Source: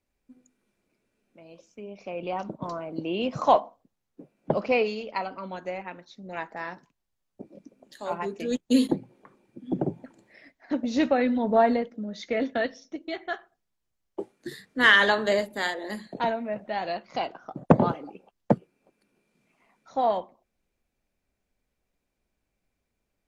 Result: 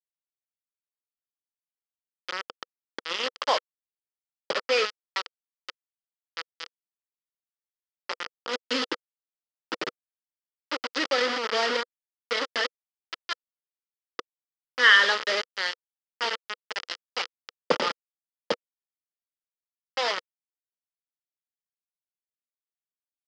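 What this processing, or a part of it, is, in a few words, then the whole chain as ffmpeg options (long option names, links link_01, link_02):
hand-held game console: -filter_complex "[0:a]asettb=1/sr,asplit=3[link_01][link_02][link_03];[link_01]atrim=end=15.844[link_04];[link_02]atrim=start=15.84:end=16.33,asetpts=PTS-STARTPTS,afade=type=in:duration=0.004:curve=qsin,afade=type=out:start_time=0.486:duration=0.004:curve=qsin,highpass=160[link_05];[link_03]atrim=start=16.326[link_06];[link_04][link_05]acrossfade=duration=0.004:curve1=hsin:curve2=qsin[link_07];[link_07][link_06]acrossfade=duration=0.004:curve1=qsin:curve2=hsin,acrusher=bits=3:mix=0:aa=0.000001,highpass=430,equalizer=frequency=490:width_type=q:width=4:gain=7,equalizer=frequency=700:width_type=q:width=4:gain=-7,equalizer=frequency=1300:width_type=q:width=4:gain=8,equalizer=frequency=1900:width_type=q:width=4:gain=6,equalizer=frequency=3100:width_type=q:width=4:gain=8,equalizer=frequency=4900:width_type=q:width=4:gain=10,lowpass=frequency=5700:width=0.5412,lowpass=frequency=5700:width=1.3066,volume=-5dB"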